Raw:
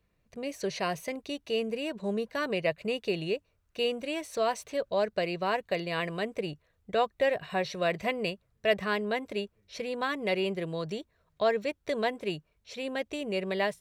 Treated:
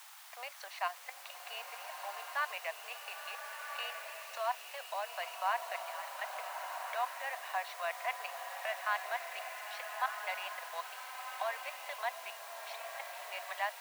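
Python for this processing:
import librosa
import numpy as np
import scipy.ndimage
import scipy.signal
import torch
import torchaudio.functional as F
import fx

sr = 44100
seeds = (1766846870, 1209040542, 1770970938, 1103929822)

y = fx.recorder_agc(x, sr, target_db=-22.5, rise_db_per_s=39.0, max_gain_db=30)
y = fx.air_absorb(y, sr, metres=140.0)
y = fx.level_steps(y, sr, step_db=15)
y = fx.quant_dither(y, sr, seeds[0], bits=8, dither='triangular')
y = scipy.signal.sosfilt(scipy.signal.butter(8, 740.0, 'highpass', fs=sr, output='sos'), y)
y = fx.high_shelf(y, sr, hz=2300.0, db=-11.0)
y = fx.rev_bloom(y, sr, seeds[1], attack_ms=1410, drr_db=4.0)
y = y * 10.0 ** (3.5 / 20.0)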